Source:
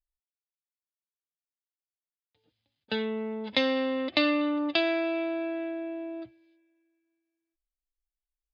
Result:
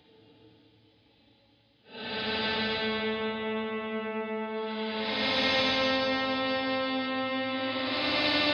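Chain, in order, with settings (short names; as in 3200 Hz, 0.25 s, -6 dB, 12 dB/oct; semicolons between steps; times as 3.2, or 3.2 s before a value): LPF 4700 Hz 24 dB/oct; dynamic EQ 2900 Hz, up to -4 dB, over -47 dBFS, Q 5.4; Paulstretch 4.7×, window 0.25 s, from 2.4; analogue delay 0.216 s, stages 2048, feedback 75%, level -8 dB; spectral compressor 2:1; gain -1 dB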